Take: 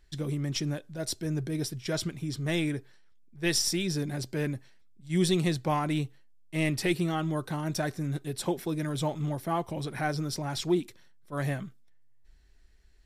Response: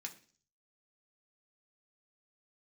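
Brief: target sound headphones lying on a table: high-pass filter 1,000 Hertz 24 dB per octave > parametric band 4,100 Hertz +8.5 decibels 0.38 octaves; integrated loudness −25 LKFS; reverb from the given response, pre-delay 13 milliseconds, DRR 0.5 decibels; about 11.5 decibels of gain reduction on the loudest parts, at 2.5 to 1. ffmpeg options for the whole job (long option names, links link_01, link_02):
-filter_complex "[0:a]acompressor=threshold=-39dB:ratio=2.5,asplit=2[link_01][link_02];[1:a]atrim=start_sample=2205,adelay=13[link_03];[link_02][link_03]afir=irnorm=-1:irlink=0,volume=2.5dB[link_04];[link_01][link_04]amix=inputs=2:normalize=0,highpass=frequency=1000:width=0.5412,highpass=frequency=1000:width=1.3066,equalizer=frequency=4100:width_type=o:width=0.38:gain=8.5,volume=15dB"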